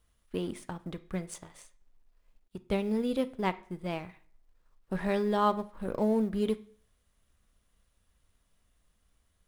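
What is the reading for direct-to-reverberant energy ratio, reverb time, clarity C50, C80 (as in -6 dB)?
11.0 dB, 0.50 s, 17.5 dB, 22.0 dB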